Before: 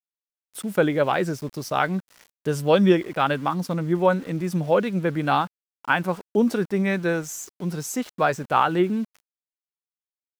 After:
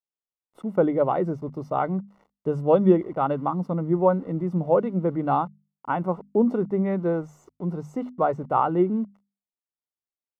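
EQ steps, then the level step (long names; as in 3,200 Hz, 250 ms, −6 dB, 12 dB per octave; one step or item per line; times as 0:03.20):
Savitzky-Golay smoothing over 65 samples
mains-hum notches 50/100/150/200/250 Hz
0.0 dB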